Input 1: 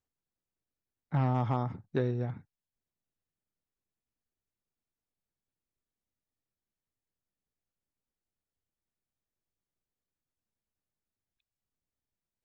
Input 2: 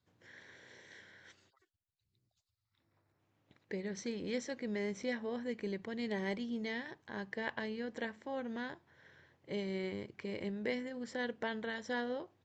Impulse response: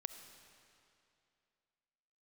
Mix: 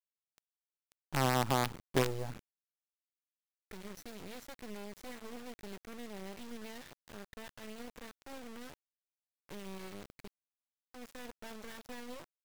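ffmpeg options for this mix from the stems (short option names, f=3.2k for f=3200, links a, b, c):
-filter_complex "[0:a]bass=f=250:g=-3,treble=f=4k:g=-13,volume=-0.5dB,asplit=2[a][b];[b]volume=-17dB[c];[1:a]alimiter=level_in=7.5dB:limit=-24dB:level=0:latency=1:release=83,volume=-7.5dB,volume=-4dB,asplit=3[d][e][f];[d]atrim=end=10.28,asetpts=PTS-STARTPTS,afade=t=out:st=10.276:d=0.004:c=hsin[g];[e]atrim=start=10.28:end=10.94,asetpts=PTS-STARTPTS,volume=0[h];[f]atrim=start=10.94,asetpts=PTS-STARTPTS,afade=t=in:d=0.004:c=hsin[i];[g][h][i]concat=n=3:v=0:a=1,asplit=3[j][k][l];[k]volume=-23dB[m];[l]apad=whole_len=548772[n];[a][n]sidechaincompress=threshold=-58dB:ratio=6:attack=11:release=926[o];[2:a]atrim=start_sample=2205[p];[c][m]amix=inputs=2:normalize=0[q];[q][p]afir=irnorm=-1:irlink=0[r];[o][j][r]amix=inputs=3:normalize=0,acrusher=bits=5:dc=4:mix=0:aa=0.000001"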